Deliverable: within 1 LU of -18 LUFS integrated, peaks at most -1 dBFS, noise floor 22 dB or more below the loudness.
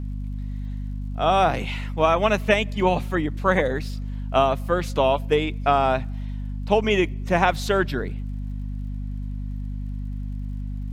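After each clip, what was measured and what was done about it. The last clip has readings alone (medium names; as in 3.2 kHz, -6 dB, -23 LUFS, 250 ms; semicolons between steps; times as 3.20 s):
tick rate 45 per s; hum 50 Hz; highest harmonic 250 Hz; hum level -27 dBFS; loudness -24.0 LUFS; peak level -2.5 dBFS; loudness target -18.0 LUFS
-> de-click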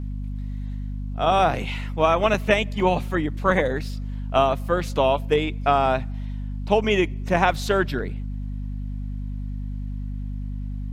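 tick rate 0.18 per s; hum 50 Hz; highest harmonic 250 Hz; hum level -27 dBFS
-> de-hum 50 Hz, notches 5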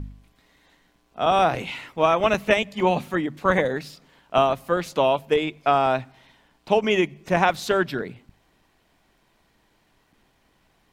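hum not found; loudness -22.5 LUFS; peak level -3.0 dBFS; loudness target -18.0 LUFS
-> trim +4.5 dB; peak limiter -1 dBFS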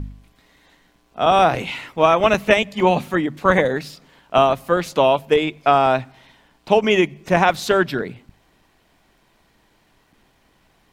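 loudness -18.0 LUFS; peak level -1.0 dBFS; noise floor -60 dBFS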